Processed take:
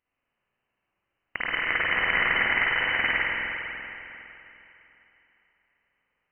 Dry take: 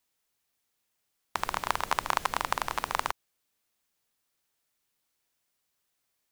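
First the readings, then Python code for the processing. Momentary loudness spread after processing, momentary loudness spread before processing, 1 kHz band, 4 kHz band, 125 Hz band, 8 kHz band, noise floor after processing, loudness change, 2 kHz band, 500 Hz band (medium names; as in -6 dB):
18 LU, 8 LU, -2.5 dB, +7.5 dB, +4.0 dB, under -35 dB, -82 dBFS, +7.5 dB, +14.5 dB, +3.5 dB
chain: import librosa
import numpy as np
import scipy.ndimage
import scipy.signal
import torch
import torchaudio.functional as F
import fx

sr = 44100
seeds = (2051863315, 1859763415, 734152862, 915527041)

y = fx.freq_invert(x, sr, carrier_hz=3000)
y = fx.rev_spring(y, sr, rt60_s=3.2, pass_ms=(46, 50), chirp_ms=45, drr_db=-8.0)
y = y * librosa.db_to_amplitude(-1.5)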